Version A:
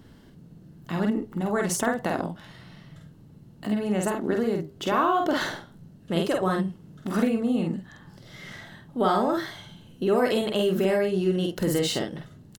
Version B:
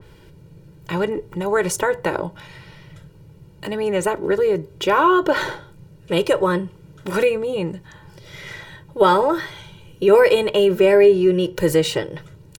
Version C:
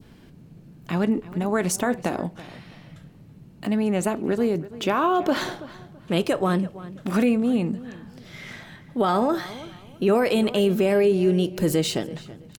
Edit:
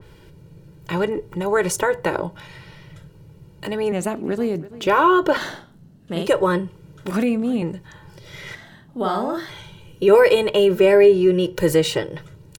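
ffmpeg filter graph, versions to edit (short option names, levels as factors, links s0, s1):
-filter_complex "[2:a]asplit=2[s0][s1];[0:a]asplit=2[s2][s3];[1:a]asplit=5[s4][s5][s6][s7][s8];[s4]atrim=end=3.922[s9];[s0]atrim=start=3.918:end=4.872[s10];[s5]atrim=start=4.868:end=5.372[s11];[s2]atrim=start=5.368:end=6.272[s12];[s6]atrim=start=6.268:end=7.112[s13];[s1]atrim=start=7.108:end=7.622[s14];[s7]atrim=start=7.618:end=8.552[s15];[s3]atrim=start=8.548:end=9.492[s16];[s8]atrim=start=9.488[s17];[s9][s10]acrossfade=d=0.004:c1=hsin:c2=hsin[s18];[s18][s11]acrossfade=d=0.004:c1=hsin:c2=hsin[s19];[s19][s12]acrossfade=d=0.004:c1=hsin:c2=hsin[s20];[s20][s13]acrossfade=d=0.004:c1=hsin:c2=hsin[s21];[s21][s14]acrossfade=d=0.004:c1=hsin:c2=hsin[s22];[s22][s15]acrossfade=d=0.004:c1=hsin:c2=hsin[s23];[s23][s16]acrossfade=d=0.004:c1=hsin:c2=hsin[s24];[s24][s17]acrossfade=d=0.004:c1=hsin:c2=hsin"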